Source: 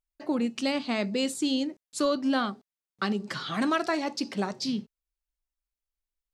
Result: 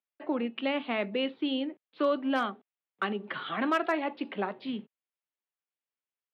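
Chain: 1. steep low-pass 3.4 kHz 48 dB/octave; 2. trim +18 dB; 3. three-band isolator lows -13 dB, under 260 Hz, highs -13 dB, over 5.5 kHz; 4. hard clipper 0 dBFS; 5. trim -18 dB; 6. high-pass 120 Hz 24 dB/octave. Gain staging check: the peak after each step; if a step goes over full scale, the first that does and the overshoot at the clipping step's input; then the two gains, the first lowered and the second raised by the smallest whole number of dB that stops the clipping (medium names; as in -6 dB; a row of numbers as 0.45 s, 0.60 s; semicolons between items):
-14.5 dBFS, +3.5 dBFS, +3.5 dBFS, 0.0 dBFS, -18.0 dBFS, -15.5 dBFS; step 2, 3.5 dB; step 2 +14 dB, step 5 -14 dB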